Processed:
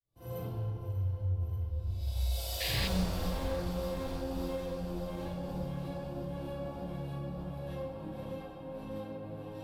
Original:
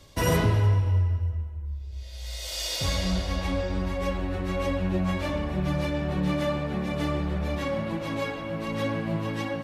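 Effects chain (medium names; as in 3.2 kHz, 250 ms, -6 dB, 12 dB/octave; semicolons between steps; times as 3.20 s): fade-in on the opening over 1.30 s; Doppler pass-by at 2.92 s, 16 m/s, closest 3.2 m; graphic EQ with 31 bands 125 Hz +12 dB, 315 Hz +7 dB, 500 Hz +6 dB, 800 Hz +8 dB, 2 kHz -12 dB, 6.3 kHz -8 dB, 12.5 kHz +11 dB; hard clipper -33 dBFS, distortion -4 dB; echo whose repeats swap between lows and highs 295 ms, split 920 Hz, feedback 73%, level -5.5 dB; saturation -33.5 dBFS, distortion -15 dB; peak limiter -43.5 dBFS, peak gain reduction 10 dB; bass shelf 94 Hz +11.5 dB; Schroeder reverb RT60 0.56 s, combs from 33 ms, DRR -9 dB; painted sound noise, 2.60–2.88 s, 1.6–5.1 kHz -38 dBFS; trim +1.5 dB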